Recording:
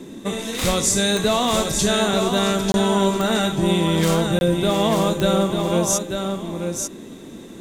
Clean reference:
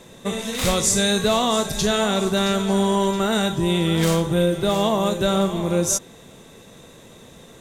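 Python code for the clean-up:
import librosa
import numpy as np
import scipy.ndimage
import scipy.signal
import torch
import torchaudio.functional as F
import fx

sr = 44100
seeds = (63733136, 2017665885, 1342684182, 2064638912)

y = fx.fix_declick_ar(x, sr, threshold=10.0)
y = fx.fix_interpolate(y, sr, at_s=(2.72, 4.39), length_ms=21.0)
y = fx.noise_reduce(y, sr, print_start_s=7.05, print_end_s=7.55, reduce_db=9.0)
y = fx.fix_echo_inverse(y, sr, delay_ms=893, level_db=-5.5)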